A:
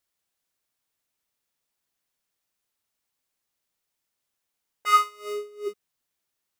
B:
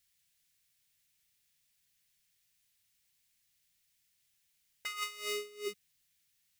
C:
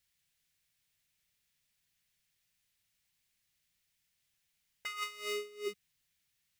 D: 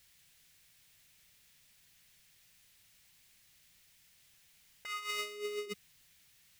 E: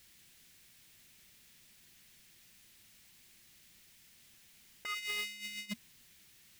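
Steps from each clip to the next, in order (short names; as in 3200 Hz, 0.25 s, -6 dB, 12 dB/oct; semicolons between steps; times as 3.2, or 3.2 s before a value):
band shelf 580 Hz -14.5 dB 2.8 oct; negative-ratio compressor -38 dBFS, ratio -1; gain +1 dB
high shelf 3800 Hz -6.5 dB; gain +1 dB
negative-ratio compressor -48 dBFS, ratio -1; gain +7 dB
spectral repair 4.96–5.83, 240–1300 Hz after; small resonant body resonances 230/340 Hz, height 10 dB, ringing for 65 ms; overloaded stage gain 35.5 dB; gain +3.5 dB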